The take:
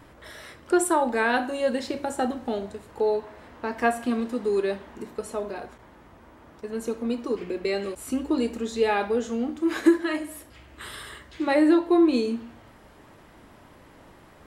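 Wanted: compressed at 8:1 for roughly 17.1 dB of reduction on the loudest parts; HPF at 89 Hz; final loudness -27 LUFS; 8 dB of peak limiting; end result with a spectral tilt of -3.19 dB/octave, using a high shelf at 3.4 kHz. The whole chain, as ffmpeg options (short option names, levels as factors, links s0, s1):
-af "highpass=89,highshelf=f=3400:g=7,acompressor=threshold=0.0316:ratio=8,volume=2.99,alimiter=limit=0.15:level=0:latency=1"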